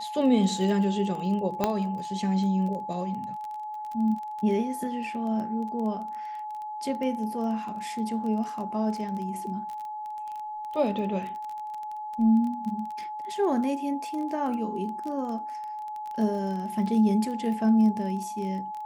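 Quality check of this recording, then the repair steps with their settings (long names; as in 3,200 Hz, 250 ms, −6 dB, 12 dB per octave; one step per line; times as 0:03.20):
surface crackle 20 per second −33 dBFS
whistle 850 Hz −33 dBFS
0:01.64: click −10 dBFS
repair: click removal
notch filter 850 Hz, Q 30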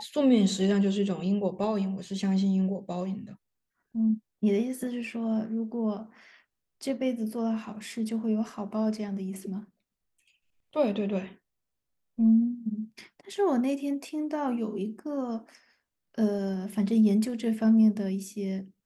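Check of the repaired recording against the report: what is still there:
0:01.64: click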